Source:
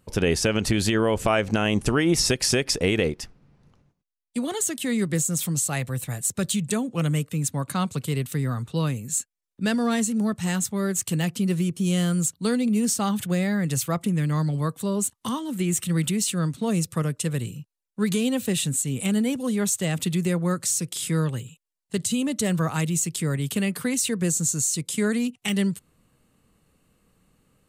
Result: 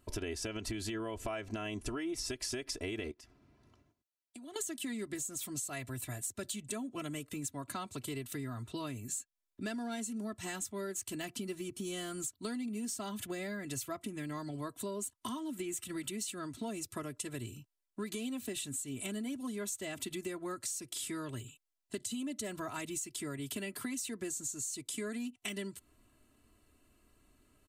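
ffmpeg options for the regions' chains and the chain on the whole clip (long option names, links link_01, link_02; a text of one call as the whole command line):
ffmpeg -i in.wav -filter_complex "[0:a]asettb=1/sr,asplit=3[link_01][link_02][link_03];[link_01]atrim=end=3.114[link_04];[link_02]atrim=start=3.11:end=4.56,asetpts=PTS-STARTPTS,afade=type=in:duration=0.004:curve=qsin,afade=type=out:start_time=1.446:duration=0.004:curve=qsin,highpass=67,acompressor=threshold=-44dB:ratio=10:attack=3.2:release=140:knee=1:detection=peak[link_05];[link_03]atrim=start=4.556[link_06];[link_04][link_05]acrossfade=duration=0.004:curve1=hsin:curve2=qsin[link_07];[link_07][link_06]acrossfade=duration=0.004:curve1=qsin:curve2=hsin,aecho=1:1:3:0.89,acompressor=threshold=-32dB:ratio=5,volume=-5.5dB" out.wav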